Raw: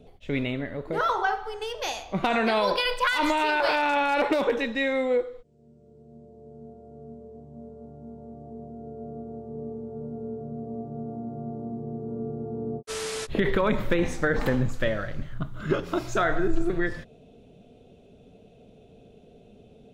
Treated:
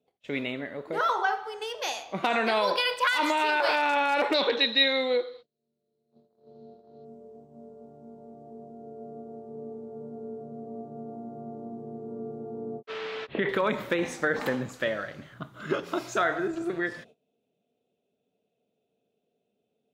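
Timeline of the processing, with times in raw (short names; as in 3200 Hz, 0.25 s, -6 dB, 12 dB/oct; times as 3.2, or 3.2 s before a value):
4.34–7.05 synth low-pass 4100 Hz, resonance Q 11
12.8–13.49 LPF 3300 Hz 24 dB/oct
whole clip: gate -46 dBFS, range -21 dB; HPF 180 Hz 12 dB/oct; low shelf 410 Hz -5.5 dB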